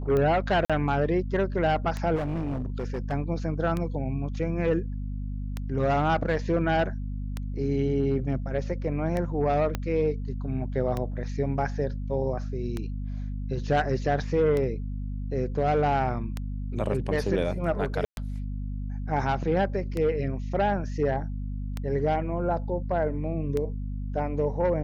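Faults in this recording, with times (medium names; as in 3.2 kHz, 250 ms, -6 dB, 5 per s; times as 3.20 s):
hum 50 Hz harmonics 5 -32 dBFS
tick 33 1/3 rpm -17 dBFS
0.65–0.70 s: dropout 46 ms
2.15–3.13 s: clipped -26 dBFS
9.75 s: pop -14 dBFS
18.05–18.17 s: dropout 120 ms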